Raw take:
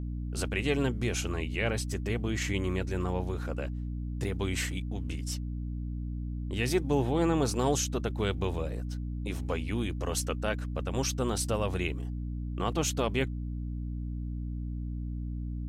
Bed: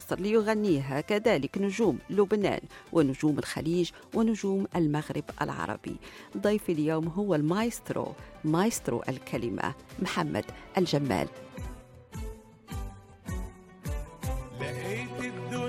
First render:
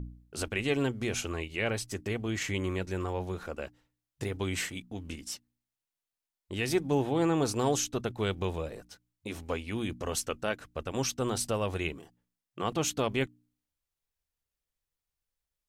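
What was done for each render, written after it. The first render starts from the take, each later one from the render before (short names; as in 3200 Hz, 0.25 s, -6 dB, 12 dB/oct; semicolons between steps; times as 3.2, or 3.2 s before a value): de-hum 60 Hz, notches 5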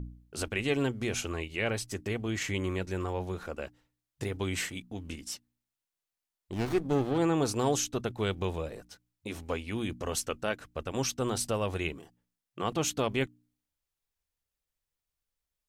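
6.52–7.18 running maximum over 17 samples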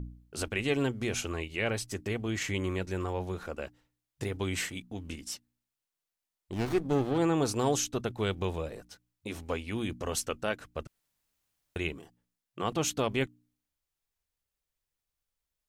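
10.87–11.76 room tone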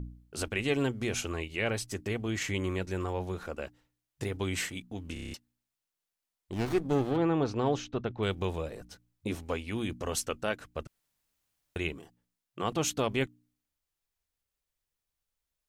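5.13 stutter in place 0.03 s, 7 plays; 7.16–8.23 air absorption 220 m; 8.8–9.35 low shelf 430 Hz +8 dB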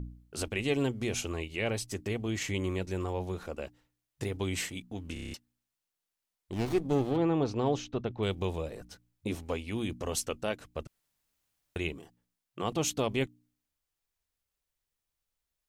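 dynamic EQ 1500 Hz, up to -6 dB, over -50 dBFS, Q 1.8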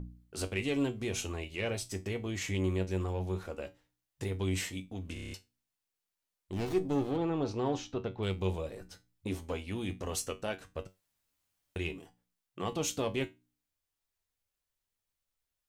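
in parallel at -5 dB: soft clip -28 dBFS, distortion -11 dB; on the sum: resonator 94 Hz, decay 0.22 s, harmonics all, mix 70%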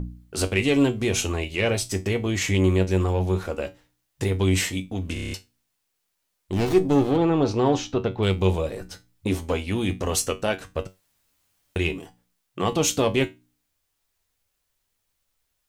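gain +11.5 dB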